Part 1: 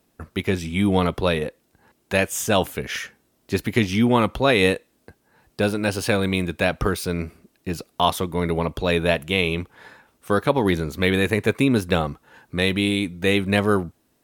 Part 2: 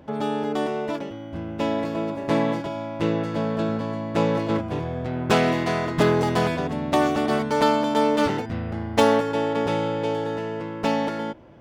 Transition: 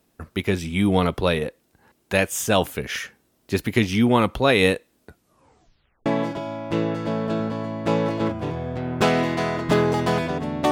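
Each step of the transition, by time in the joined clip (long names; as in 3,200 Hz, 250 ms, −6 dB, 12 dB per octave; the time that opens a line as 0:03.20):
part 1
0:05.02: tape stop 1.04 s
0:06.06: continue with part 2 from 0:02.35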